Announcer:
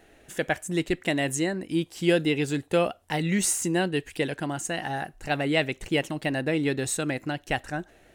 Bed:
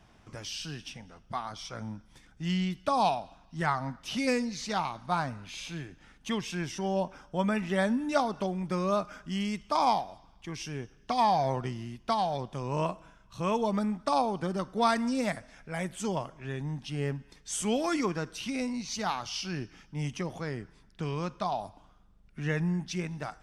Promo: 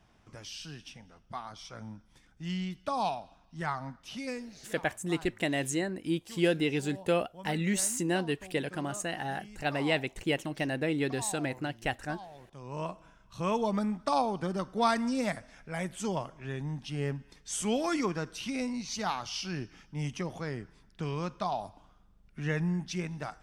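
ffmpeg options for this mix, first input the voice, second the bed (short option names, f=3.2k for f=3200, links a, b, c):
-filter_complex "[0:a]adelay=4350,volume=-4.5dB[a];[1:a]volume=12dB,afade=t=out:st=3.82:d=0.91:silence=0.223872,afade=t=in:st=12.43:d=0.84:silence=0.141254[b];[a][b]amix=inputs=2:normalize=0"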